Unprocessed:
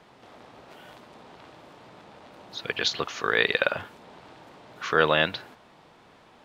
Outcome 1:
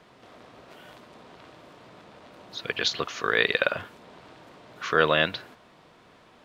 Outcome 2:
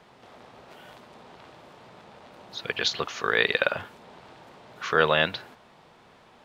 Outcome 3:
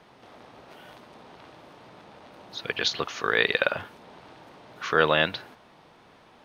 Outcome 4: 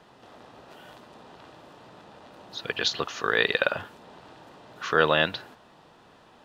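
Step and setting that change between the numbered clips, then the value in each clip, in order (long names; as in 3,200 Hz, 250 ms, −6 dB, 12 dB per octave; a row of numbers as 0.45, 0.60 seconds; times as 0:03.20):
notch filter, centre frequency: 840, 300, 7,400, 2,200 Hertz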